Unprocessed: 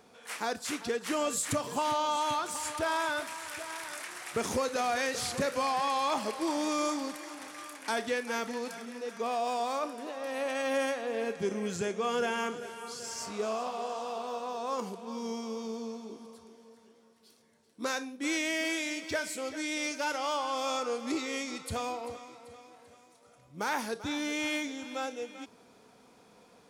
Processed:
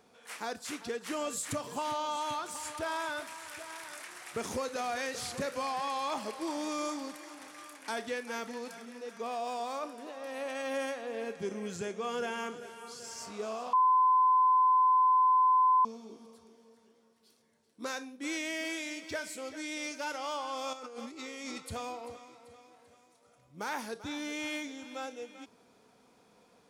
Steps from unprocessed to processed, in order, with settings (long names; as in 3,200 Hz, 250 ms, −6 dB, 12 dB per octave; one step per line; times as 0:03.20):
0:13.73–0:15.85: beep over 1,020 Hz −16.5 dBFS
0:20.73–0:21.60: compressor whose output falls as the input rises −39 dBFS, ratio −1
level −4.5 dB